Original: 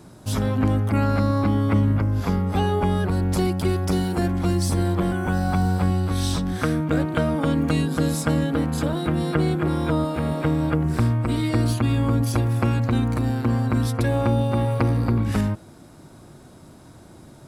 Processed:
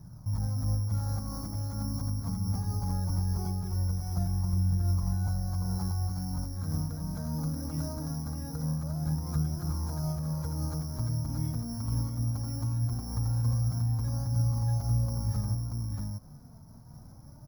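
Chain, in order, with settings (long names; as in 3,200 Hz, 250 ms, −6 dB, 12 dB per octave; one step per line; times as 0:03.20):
brickwall limiter −15 dBFS, peak gain reduction 8 dB
bad sample-rate conversion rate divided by 8×, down filtered, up zero stuff
drawn EQ curve 150 Hz 0 dB, 360 Hz −20 dB, 870 Hz −9 dB, 3,500 Hz −30 dB
single-tap delay 633 ms −3 dB
flanger 0.21 Hz, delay 0.5 ms, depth 4.1 ms, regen +54%
in parallel at +3 dB: downward compressor, threshold −40 dBFS, peak gain reduction 17 dB
on the sum: amplitude modulation by smooth noise, depth 55%
level −1 dB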